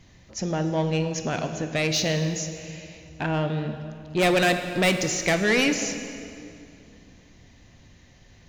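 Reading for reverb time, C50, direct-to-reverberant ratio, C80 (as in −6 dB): 2.6 s, 8.0 dB, 7.0 dB, 9.0 dB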